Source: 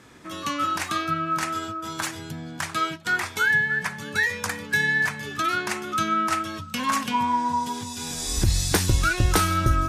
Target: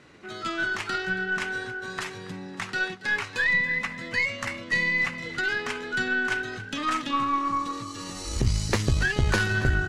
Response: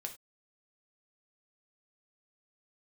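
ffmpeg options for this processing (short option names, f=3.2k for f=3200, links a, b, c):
-filter_complex "[0:a]asetrate=50951,aresample=44100,atempo=0.865537,aeval=exprs='0.473*(cos(1*acos(clip(val(0)/0.473,-1,1)))-cos(1*PI/2))+0.15*(cos(2*acos(clip(val(0)/0.473,-1,1)))-cos(2*PI/2))':c=same,lowpass=5.4k,asplit=5[a][b][c][d][e];[b]adelay=278,afreqshift=42,volume=-16.5dB[f];[c]adelay=556,afreqshift=84,volume=-23.6dB[g];[d]adelay=834,afreqshift=126,volume=-30.8dB[h];[e]adelay=1112,afreqshift=168,volume=-37.9dB[i];[a][f][g][h][i]amix=inputs=5:normalize=0,volume=-2.5dB"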